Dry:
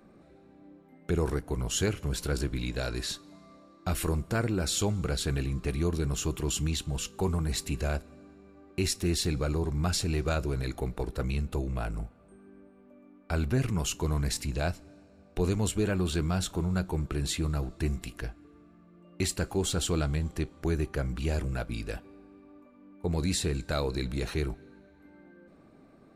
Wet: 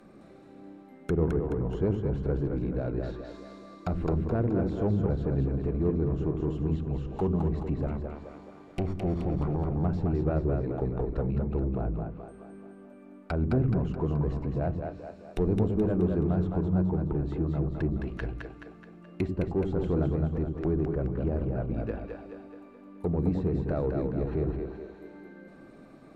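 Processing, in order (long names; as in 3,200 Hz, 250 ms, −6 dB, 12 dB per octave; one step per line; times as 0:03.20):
0:07.86–0:09.72: lower of the sound and its delayed copy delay 0.88 ms
treble cut that deepens with the level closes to 670 Hz, closed at −29.5 dBFS
parametric band 76 Hz −5.5 dB 0.92 octaves
in parallel at −5.5 dB: soft clipping −29.5 dBFS, distortion −12 dB
on the sum: echo with a time of its own for lows and highs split 340 Hz, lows 86 ms, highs 213 ms, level −4 dB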